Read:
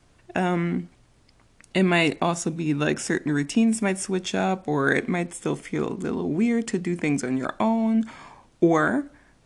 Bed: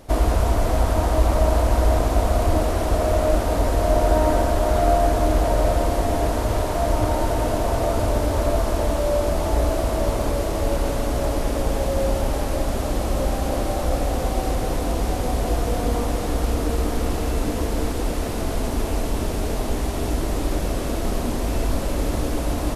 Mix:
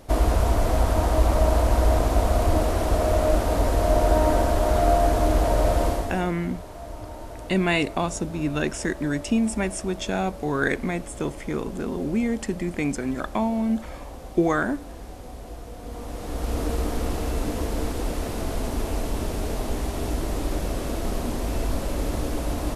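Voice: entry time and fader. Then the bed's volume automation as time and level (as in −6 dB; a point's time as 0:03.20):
5.75 s, −2.0 dB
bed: 0:05.88 −1.5 dB
0:06.34 −16.5 dB
0:15.77 −16.5 dB
0:16.59 −3.5 dB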